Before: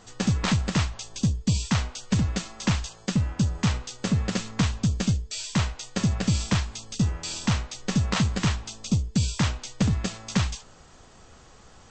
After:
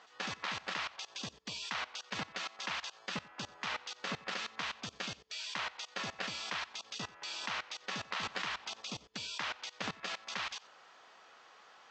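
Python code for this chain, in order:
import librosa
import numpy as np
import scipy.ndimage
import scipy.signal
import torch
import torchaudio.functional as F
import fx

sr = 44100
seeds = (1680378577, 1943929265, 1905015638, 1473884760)

y = scipy.signal.sosfilt(scipy.signal.bessel(2, 1100.0, 'highpass', norm='mag', fs=sr, output='sos'), x)
y = fx.level_steps(y, sr, step_db=22)
y = fx.air_absorb(y, sr, metres=220.0)
y = y + 10.0 ** (-21.5 / 20.0) * np.pad(y, (int(91 * sr / 1000.0), 0))[:len(y)]
y = fx.band_squash(y, sr, depth_pct=70, at=(8.23, 8.81))
y = y * librosa.db_to_amplitude(10.5)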